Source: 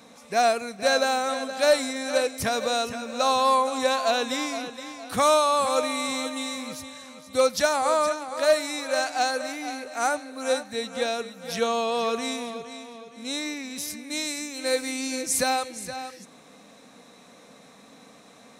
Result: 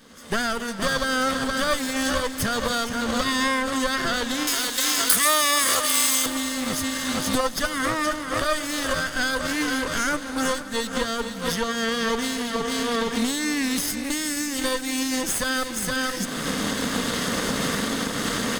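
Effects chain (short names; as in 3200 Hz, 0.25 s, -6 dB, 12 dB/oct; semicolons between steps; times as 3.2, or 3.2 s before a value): minimum comb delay 0.62 ms; recorder AGC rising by 33 dB/s; 4.47–6.26 RIAA curve recording; feedback echo 0.267 s, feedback 59%, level -16.5 dB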